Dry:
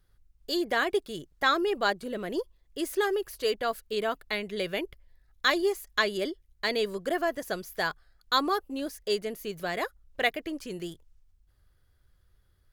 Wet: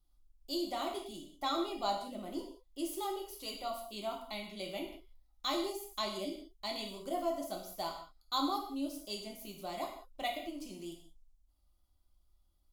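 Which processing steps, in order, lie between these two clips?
static phaser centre 450 Hz, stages 6; gated-style reverb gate 220 ms falling, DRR 0 dB; trim -7.5 dB

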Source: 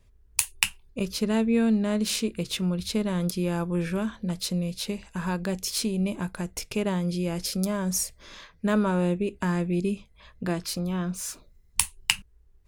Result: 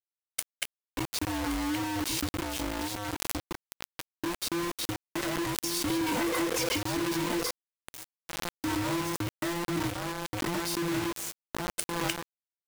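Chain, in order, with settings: every band turned upside down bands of 500 Hz; 5.90–6.78 s: overdrive pedal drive 36 dB, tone 5.9 kHz, clips at -15.5 dBFS; compression 8:1, threshold -26 dBFS, peak gain reduction 10.5 dB; 2.40–4.23 s: feedback comb 120 Hz, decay 0.22 s, harmonics all, mix 100%; filtered feedback delay 1122 ms, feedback 29%, low-pass 2.1 kHz, level -4 dB; 7.51–8.73 s: fade in; bit crusher 5-bit; swell ahead of each attack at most 28 dB/s; trim -3.5 dB

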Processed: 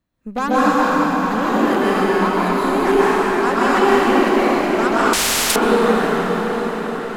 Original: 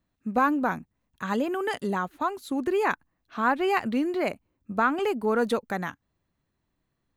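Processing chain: Chebyshev shaper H 8 -21 dB, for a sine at -11 dBFS; on a send: echo that smears into a reverb 924 ms, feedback 57%, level -11 dB; on the sum: plate-style reverb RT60 4.9 s, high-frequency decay 0.8×, pre-delay 115 ms, DRR -10 dB; 5.13–5.56 s: spectrum-flattening compressor 10:1

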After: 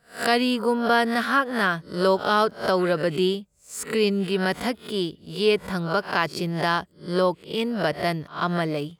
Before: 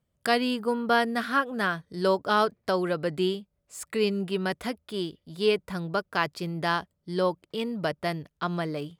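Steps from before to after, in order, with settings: reverse spectral sustain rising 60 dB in 0.32 s; in parallel at -2.5 dB: peak limiter -19 dBFS, peak gain reduction 10 dB

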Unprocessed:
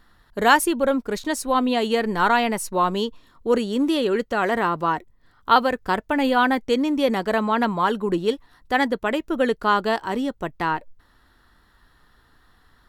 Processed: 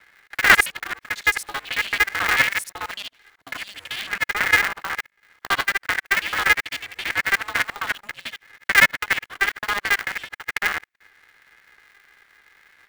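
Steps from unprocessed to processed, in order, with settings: time reversed locally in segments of 55 ms; resonant high-pass 1.9 kHz, resonance Q 9.4; polarity switched at an audio rate 200 Hz; trim -3.5 dB

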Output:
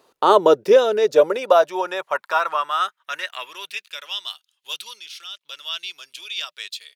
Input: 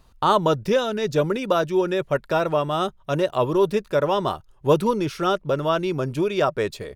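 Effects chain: 4.99–5.41 s: level held to a coarse grid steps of 14 dB; high-pass sweep 410 Hz -> 3.3 kHz, 0.82–4.16 s; trim +1.5 dB

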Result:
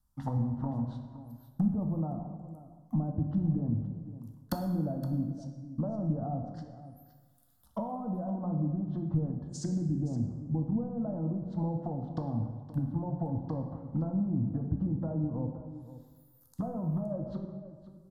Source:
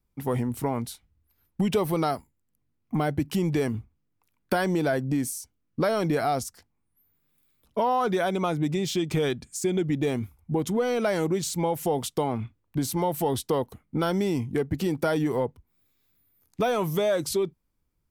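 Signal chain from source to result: low-pass that closes with the level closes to 830 Hz, closed at -21 dBFS; de-hum 87.35 Hz, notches 12; low-pass that closes with the level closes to 370 Hz, closed at -24.5 dBFS; treble shelf 6.2 kHz +4 dB; static phaser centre 980 Hz, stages 4; on a send: delay 518 ms -14.5 dB; on the sum: plate-style reverb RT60 1.4 s, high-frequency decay 0.65×, DRR 4 dB; trim +1 dB

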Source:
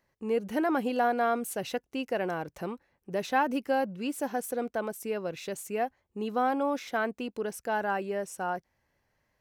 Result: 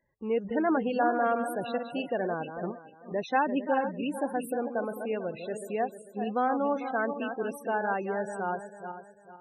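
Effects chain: backward echo that repeats 223 ms, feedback 55%, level -7.5 dB; 2.71–3.11 s: feedback comb 100 Hz, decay 0.2 s, harmonics all, mix 60%; loudest bins only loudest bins 32

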